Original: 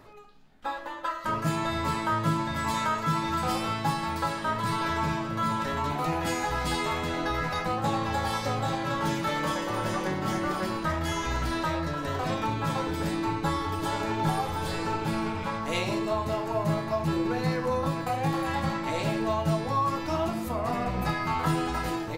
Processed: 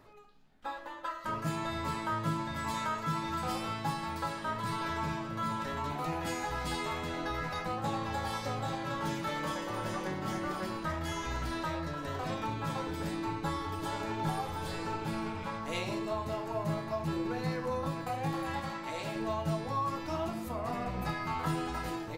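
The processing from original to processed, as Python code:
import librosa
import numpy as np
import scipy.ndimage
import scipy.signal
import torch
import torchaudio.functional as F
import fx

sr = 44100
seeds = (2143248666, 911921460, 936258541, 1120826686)

y = fx.low_shelf(x, sr, hz=340.0, db=-7.5, at=(18.6, 19.16))
y = F.gain(torch.from_numpy(y), -6.5).numpy()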